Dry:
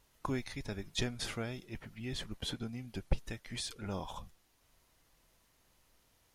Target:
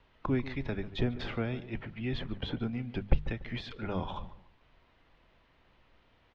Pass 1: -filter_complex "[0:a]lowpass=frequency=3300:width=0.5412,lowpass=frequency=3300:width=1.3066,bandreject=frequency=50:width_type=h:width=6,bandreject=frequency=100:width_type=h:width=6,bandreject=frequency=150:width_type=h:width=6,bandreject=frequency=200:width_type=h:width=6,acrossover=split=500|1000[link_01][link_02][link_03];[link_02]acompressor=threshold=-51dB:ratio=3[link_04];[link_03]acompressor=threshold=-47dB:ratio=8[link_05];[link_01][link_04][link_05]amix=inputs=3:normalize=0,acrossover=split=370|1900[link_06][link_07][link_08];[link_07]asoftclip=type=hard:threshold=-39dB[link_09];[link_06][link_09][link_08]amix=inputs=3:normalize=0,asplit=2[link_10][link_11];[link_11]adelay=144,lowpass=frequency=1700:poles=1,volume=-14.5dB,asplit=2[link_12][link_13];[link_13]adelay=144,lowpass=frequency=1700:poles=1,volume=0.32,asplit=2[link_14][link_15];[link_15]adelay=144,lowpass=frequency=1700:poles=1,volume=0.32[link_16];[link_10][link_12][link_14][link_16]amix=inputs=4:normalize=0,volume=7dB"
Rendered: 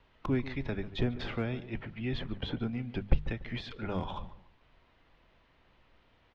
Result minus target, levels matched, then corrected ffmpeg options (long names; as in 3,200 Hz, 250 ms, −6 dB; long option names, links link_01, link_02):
hard clipping: distortion +33 dB
-filter_complex "[0:a]lowpass=frequency=3300:width=0.5412,lowpass=frequency=3300:width=1.3066,bandreject=frequency=50:width_type=h:width=6,bandreject=frequency=100:width_type=h:width=6,bandreject=frequency=150:width_type=h:width=6,bandreject=frequency=200:width_type=h:width=6,acrossover=split=500|1000[link_01][link_02][link_03];[link_02]acompressor=threshold=-51dB:ratio=3[link_04];[link_03]acompressor=threshold=-47dB:ratio=8[link_05];[link_01][link_04][link_05]amix=inputs=3:normalize=0,acrossover=split=370|1900[link_06][link_07][link_08];[link_07]asoftclip=type=hard:threshold=-30.5dB[link_09];[link_06][link_09][link_08]amix=inputs=3:normalize=0,asplit=2[link_10][link_11];[link_11]adelay=144,lowpass=frequency=1700:poles=1,volume=-14.5dB,asplit=2[link_12][link_13];[link_13]adelay=144,lowpass=frequency=1700:poles=1,volume=0.32,asplit=2[link_14][link_15];[link_15]adelay=144,lowpass=frequency=1700:poles=1,volume=0.32[link_16];[link_10][link_12][link_14][link_16]amix=inputs=4:normalize=0,volume=7dB"